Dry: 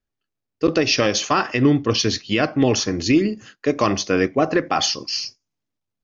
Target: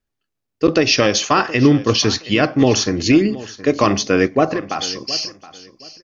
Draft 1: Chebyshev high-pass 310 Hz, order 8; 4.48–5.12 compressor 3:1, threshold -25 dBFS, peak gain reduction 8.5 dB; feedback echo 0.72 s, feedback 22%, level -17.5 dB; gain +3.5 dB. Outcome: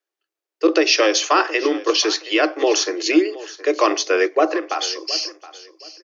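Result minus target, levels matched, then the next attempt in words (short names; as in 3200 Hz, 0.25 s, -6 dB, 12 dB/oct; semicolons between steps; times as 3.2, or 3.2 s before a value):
250 Hz band -3.5 dB
4.48–5.12 compressor 3:1, threshold -25 dBFS, peak gain reduction 9 dB; feedback echo 0.72 s, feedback 22%, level -17.5 dB; gain +3.5 dB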